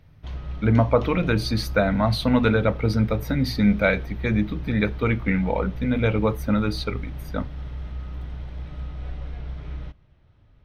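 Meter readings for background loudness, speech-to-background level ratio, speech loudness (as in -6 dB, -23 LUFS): -35.5 LUFS, 12.5 dB, -23.0 LUFS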